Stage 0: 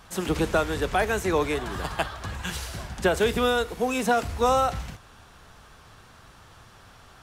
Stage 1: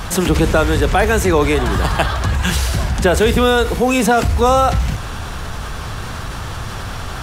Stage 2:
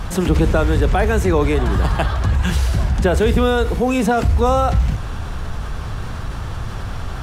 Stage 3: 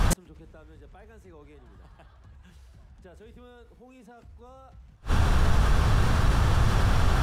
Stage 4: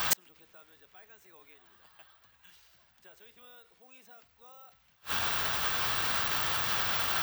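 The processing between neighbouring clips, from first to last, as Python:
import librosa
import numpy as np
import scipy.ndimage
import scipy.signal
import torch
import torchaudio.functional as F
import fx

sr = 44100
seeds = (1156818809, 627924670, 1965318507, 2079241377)

y1 = fx.low_shelf(x, sr, hz=150.0, db=7.5)
y1 = fx.env_flatten(y1, sr, amount_pct=50)
y1 = y1 * 10.0 ** (6.5 / 20.0)
y2 = fx.tilt_eq(y1, sr, slope=-1.5)
y2 = y2 * 10.0 ** (-4.5 / 20.0)
y3 = fx.gate_flip(y2, sr, shuts_db=-14.0, range_db=-38)
y3 = y3 * 10.0 ** (4.0 / 20.0)
y4 = fx.bandpass_q(y3, sr, hz=3800.0, q=0.68)
y4 = (np.kron(scipy.signal.resample_poly(y4, 1, 2), np.eye(2)[0]) * 2)[:len(y4)]
y4 = y4 * 10.0 ** (4.5 / 20.0)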